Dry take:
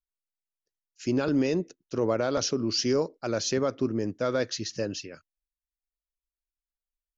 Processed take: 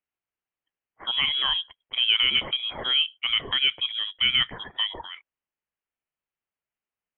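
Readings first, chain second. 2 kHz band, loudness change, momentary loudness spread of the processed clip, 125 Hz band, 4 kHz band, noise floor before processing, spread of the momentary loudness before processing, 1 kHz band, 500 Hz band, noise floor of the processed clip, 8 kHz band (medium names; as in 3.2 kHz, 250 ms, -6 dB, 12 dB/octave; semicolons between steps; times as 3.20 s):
+10.5 dB, +5.0 dB, 9 LU, -13.5 dB, +16.0 dB, under -85 dBFS, 8 LU, 0.0 dB, -18.5 dB, under -85 dBFS, no reading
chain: high-pass 540 Hz 12 dB/octave; frequency inversion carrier 3.6 kHz; trim +8 dB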